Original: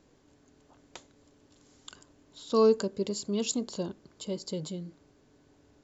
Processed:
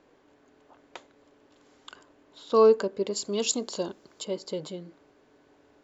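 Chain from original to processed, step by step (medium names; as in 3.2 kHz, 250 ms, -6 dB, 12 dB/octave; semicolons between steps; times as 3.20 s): tone controls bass -14 dB, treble -14 dB, from 3.15 s treble -1 dB, from 4.23 s treble -11 dB; trim +6 dB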